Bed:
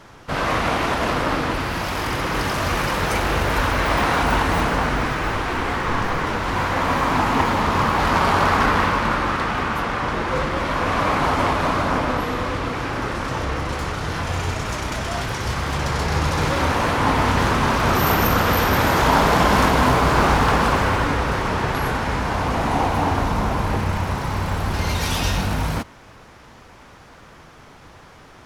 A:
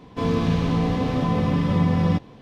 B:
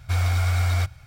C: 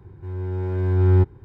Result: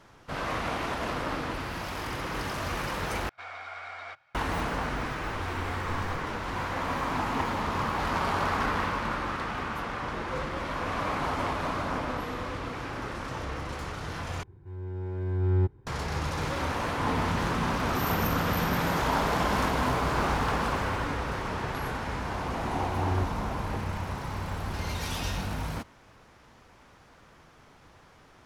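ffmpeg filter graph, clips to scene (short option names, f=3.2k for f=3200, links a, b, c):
-filter_complex "[2:a]asplit=2[a][b];[3:a]asplit=2[c][d];[0:a]volume=-10.5dB[e];[a]highpass=680,lowpass=2.2k[f];[e]asplit=3[g][h][i];[g]atrim=end=3.294[j];[f]atrim=end=1.06,asetpts=PTS-STARTPTS,volume=-5.5dB[k];[h]atrim=start=4.346:end=14.434[l];[c]atrim=end=1.44,asetpts=PTS-STARTPTS,volume=-8.5dB[m];[i]atrim=start=15.866[n];[b]atrim=end=1.06,asetpts=PTS-STARTPTS,volume=-17.5dB,afade=t=in:d=0.004:c=hsin,afade=t=out:st=1.056:d=0.004:c=hsin,adelay=5310[o];[1:a]atrim=end=2.41,asetpts=PTS-STARTPTS,volume=-13.5dB,afade=t=in:d=0.004:c=hsin,afade=t=out:st=2.406:d=0.004:c=hsin,adelay=16810[p];[d]atrim=end=1.44,asetpts=PTS-STARTPTS,volume=-14.5dB,afade=t=in:d=0.004:c=hsin,afade=t=out:st=1.436:d=0.004:c=hsin,adelay=22010[q];[j][k]acrossfade=d=0.004:c1=hsin:c2=hsin[r];[r][l]acrossfade=d=0.004:c1=hsin:c2=hsin[s];[s][m]acrossfade=d=0.004:c1=hsin:c2=hsin[t];[t][n]acrossfade=d=0.004:c1=hsin:c2=hsin[u];[u][o][p][q]amix=inputs=4:normalize=0"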